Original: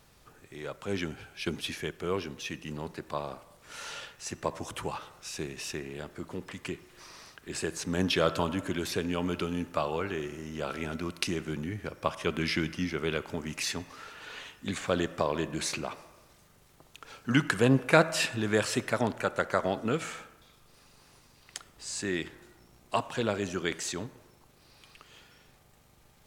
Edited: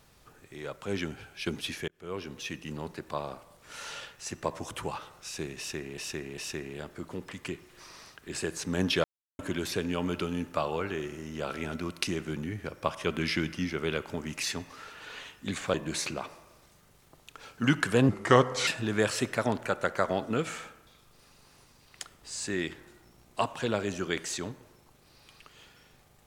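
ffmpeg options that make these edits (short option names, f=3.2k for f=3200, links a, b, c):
-filter_complex "[0:a]asplit=9[a][b][c][d][e][f][g][h][i];[a]atrim=end=1.88,asetpts=PTS-STARTPTS,afade=t=out:st=1.876:d=0.004:c=hsin[j];[b]atrim=start=1.88:end=5.982,asetpts=PTS-STARTPTS,afade=t=in:d=0.5[k];[c]atrim=start=5.578:end=5.982[l];[d]atrim=start=5.578:end=8.24,asetpts=PTS-STARTPTS,afade=t=out:st=2.658:d=0.004:c=hsin[m];[e]atrim=start=8.24:end=8.59,asetpts=PTS-STARTPTS,volume=0[n];[f]atrim=start=8.59:end=14.942,asetpts=PTS-STARTPTS,afade=t=in:d=0.004:c=hsin[o];[g]atrim=start=15.408:end=17.764[p];[h]atrim=start=17.76:end=18.22,asetpts=PTS-STARTPTS,asetrate=34839,aresample=44100,atrim=end_sample=25678,asetpts=PTS-STARTPTS[q];[i]atrim=start=18.216[r];[j][k]concat=n=2:v=0:a=1[s];[s][l]acrossfade=d=0.004:c1=hsin:c2=hsin[t];[m][n][o]concat=n=3:v=0:a=1[u];[t][u]acrossfade=d=0.004:c1=hsin:c2=hsin[v];[v][p]acrossfade=d=0.004:c1=hsin:c2=hsin[w];[w][q]acrossfade=d=0.004:c1=hsin:c2=hsin[x];[x][r]acrossfade=d=0.004:c1=hsin:c2=hsin"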